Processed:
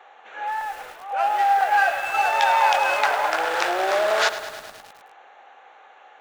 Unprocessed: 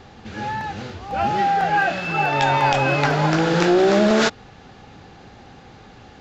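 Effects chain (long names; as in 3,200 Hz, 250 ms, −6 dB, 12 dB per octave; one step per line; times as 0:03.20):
adaptive Wiener filter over 9 samples
high-pass filter 610 Hz 24 dB per octave
feedback echo at a low word length 105 ms, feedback 80%, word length 6 bits, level −12.5 dB
level +1 dB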